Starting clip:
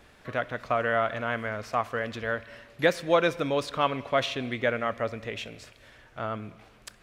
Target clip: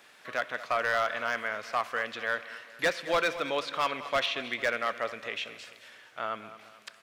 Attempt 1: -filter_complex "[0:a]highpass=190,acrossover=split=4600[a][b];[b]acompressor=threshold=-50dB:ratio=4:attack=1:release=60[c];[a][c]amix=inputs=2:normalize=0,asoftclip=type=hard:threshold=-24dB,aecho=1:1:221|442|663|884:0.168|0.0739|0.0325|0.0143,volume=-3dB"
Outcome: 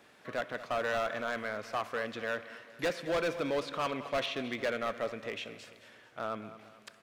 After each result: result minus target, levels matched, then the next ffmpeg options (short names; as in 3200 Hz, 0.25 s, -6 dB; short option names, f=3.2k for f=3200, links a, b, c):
hard clip: distortion +5 dB; 500 Hz band +3.0 dB
-filter_complex "[0:a]highpass=190,acrossover=split=4600[a][b];[b]acompressor=threshold=-50dB:ratio=4:attack=1:release=60[c];[a][c]amix=inputs=2:normalize=0,asoftclip=type=hard:threshold=-17.5dB,aecho=1:1:221|442|663|884:0.168|0.0739|0.0325|0.0143,volume=-3dB"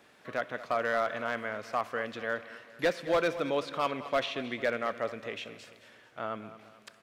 500 Hz band +3.0 dB
-filter_complex "[0:a]highpass=190,tiltshelf=f=650:g=-7,acrossover=split=4600[a][b];[b]acompressor=threshold=-50dB:ratio=4:attack=1:release=60[c];[a][c]amix=inputs=2:normalize=0,asoftclip=type=hard:threshold=-17.5dB,aecho=1:1:221|442|663|884:0.168|0.0739|0.0325|0.0143,volume=-3dB"